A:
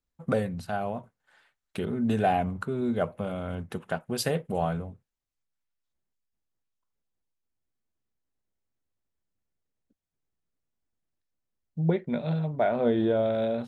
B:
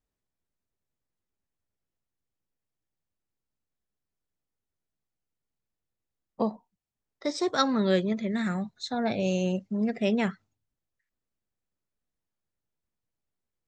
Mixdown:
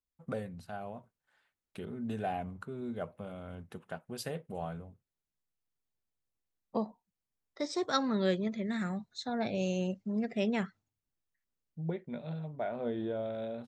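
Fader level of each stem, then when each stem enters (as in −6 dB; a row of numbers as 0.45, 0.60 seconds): −11.0, −5.5 decibels; 0.00, 0.35 seconds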